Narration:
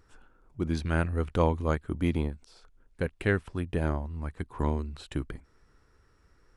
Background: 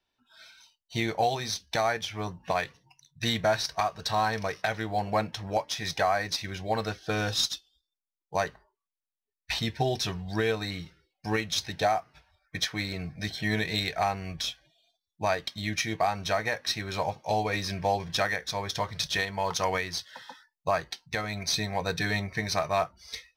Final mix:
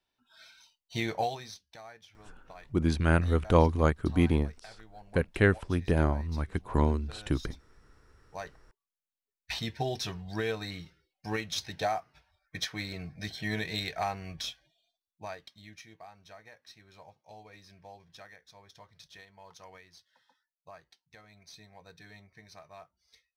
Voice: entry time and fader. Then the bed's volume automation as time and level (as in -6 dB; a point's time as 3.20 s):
2.15 s, +3.0 dB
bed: 1.18 s -3 dB
1.76 s -22 dB
7.96 s -22 dB
8.75 s -5 dB
14.63 s -5 dB
15.99 s -23.5 dB